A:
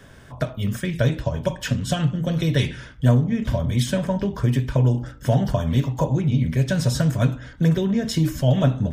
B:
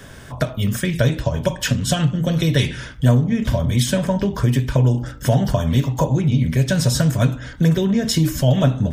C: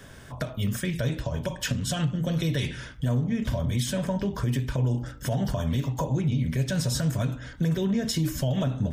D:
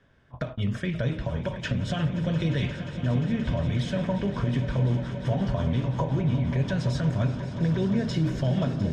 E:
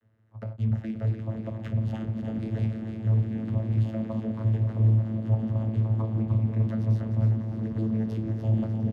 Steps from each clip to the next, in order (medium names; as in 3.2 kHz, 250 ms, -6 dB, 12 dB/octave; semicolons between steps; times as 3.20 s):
treble shelf 4.3 kHz +5.5 dB; in parallel at +1 dB: compression, threshold -26 dBFS, peak gain reduction 13.5 dB
peak limiter -10.5 dBFS, peak gain reduction 7 dB; trim -7 dB
low-pass 3.2 kHz 12 dB/octave; gate -36 dBFS, range -15 dB; on a send: echo with a slow build-up 176 ms, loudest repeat 5, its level -15 dB
frequency-shifting echo 300 ms, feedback 51%, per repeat +57 Hz, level -7.5 dB; vocoder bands 16, saw 110 Hz; sliding maximum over 3 samples